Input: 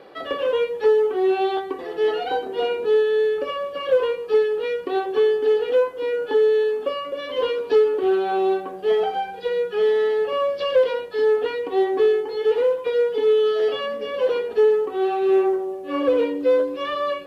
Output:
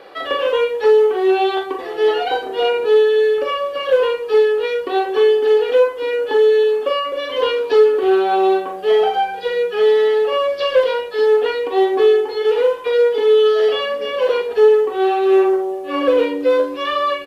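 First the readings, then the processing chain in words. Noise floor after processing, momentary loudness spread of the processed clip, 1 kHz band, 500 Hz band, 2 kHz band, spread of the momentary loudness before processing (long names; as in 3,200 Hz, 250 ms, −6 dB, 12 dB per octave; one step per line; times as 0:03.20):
−29 dBFS, 7 LU, +6.5 dB, +5.0 dB, +6.5 dB, 7 LU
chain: parametric band 150 Hz −10.5 dB 2.6 octaves
double-tracking delay 42 ms −6.5 dB
level +7 dB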